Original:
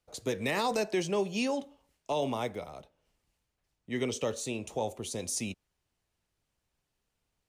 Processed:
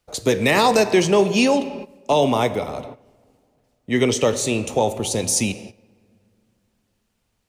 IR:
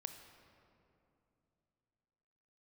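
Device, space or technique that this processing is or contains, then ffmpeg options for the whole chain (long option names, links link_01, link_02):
keyed gated reverb: -filter_complex "[0:a]asplit=3[link_01][link_02][link_03];[1:a]atrim=start_sample=2205[link_04];[link_02][link_04]afir=irnorm=-1:irlink=0[link_05];[link_03]apad=whole_len=330011[link_06];[link_05][link_06]sidechaingate=range=-15dB:threshold=-60dB:ratio=16:detection=peak,volume=4.5dB[link_07];[link_01][link_07]amix=inputs=2:normalize=0,volume=7.5dB"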